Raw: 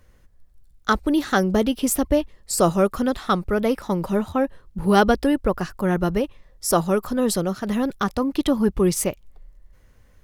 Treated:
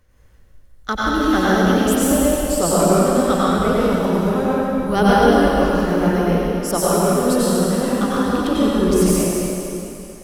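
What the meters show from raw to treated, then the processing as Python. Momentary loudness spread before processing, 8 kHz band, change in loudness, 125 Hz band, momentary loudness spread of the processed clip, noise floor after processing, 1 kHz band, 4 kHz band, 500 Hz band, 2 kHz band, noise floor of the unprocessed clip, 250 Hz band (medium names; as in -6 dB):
7 LU, +5.0 dB, +5.0 dB, +6.0 dB, 6 LU, -47 dBFS, +5.5 dB, +5.0 dB, +5.5 dB, +5.0 dB, -55 dBFS, +5.0 dB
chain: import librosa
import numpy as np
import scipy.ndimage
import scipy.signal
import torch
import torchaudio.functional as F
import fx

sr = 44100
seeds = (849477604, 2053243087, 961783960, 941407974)

y = fx.rev_plate(x, sr, seeds[0], rt60_s=3.0, hf_ratio=0.95, predelay_ms=80, drr_db=-8.5)
y = y * 10.0 ** (-4.0 / 20.0)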